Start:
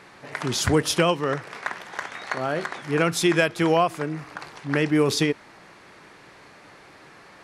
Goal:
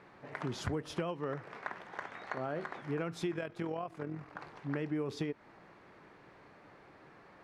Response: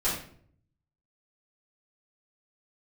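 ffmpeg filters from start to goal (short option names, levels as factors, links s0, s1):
-filter_complex "[0:a]lowpass=f=1200:p=1,acompressor=threshold=0.0501:ratio=6,asettb=1/sr,asplit=3[s0][s1][s2];[s0]atrim=end=3.314[s3];[s1]atrim=start=3.31:end=4.35,asetpts=PTS-STARTPTS,afade=t=in:d=0.004:c=qsin,afade=t=out:st=1.036:d=0.004:c=qsin,tremolo=f=42:d=0.519[s4];[s2]atrim=start=4.346[s5];[s3][s4]acrossfade=d=0.004:c1=hsin:c2=qsin[s6];[s6][s5]acrossfade=d=0.004:c1=qsin:c2=hsin,volume=0.473"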